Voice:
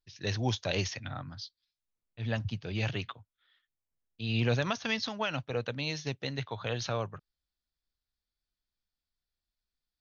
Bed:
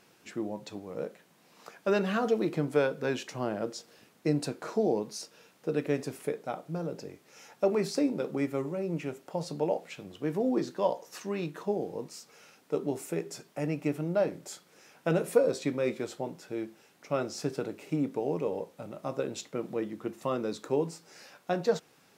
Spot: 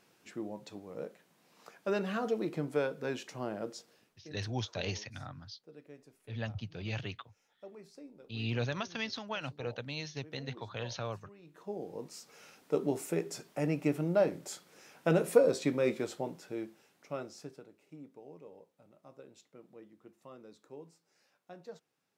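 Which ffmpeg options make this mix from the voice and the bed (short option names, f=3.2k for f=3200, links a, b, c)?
-filter_complex "[0:a]adelay=4100,volume=-5.5dB[a];[1:a]volume=18dB,afade=t=out:st=3.78:d=0.5:silence=0.125893,afade=t=in:st=11.43:d=1.03:silence=0.0668344,afade=t=out:st=15.92:d=1.74:silence=0.0944061[b];[a][b]amix=inputs=2:normalize=0"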